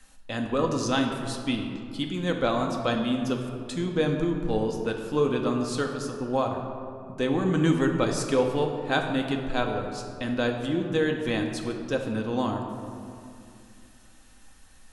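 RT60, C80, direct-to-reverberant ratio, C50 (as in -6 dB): 2.5 s, 6.0 dB, 2.0 dB, 5.0 dB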